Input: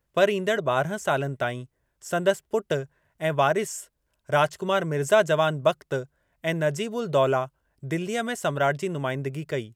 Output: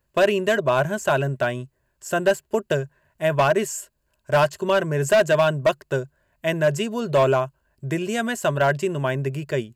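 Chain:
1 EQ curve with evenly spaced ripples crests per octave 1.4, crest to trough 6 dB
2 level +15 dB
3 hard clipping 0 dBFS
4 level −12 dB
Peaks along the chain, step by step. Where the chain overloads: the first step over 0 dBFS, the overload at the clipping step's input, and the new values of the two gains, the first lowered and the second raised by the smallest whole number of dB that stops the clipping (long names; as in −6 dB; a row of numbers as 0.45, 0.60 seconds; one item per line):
−5.5, +9.5, 0.0, −12.0 dBFS
step 2, 9.5 dB
step 2 +5 dB, step 4 −2 dB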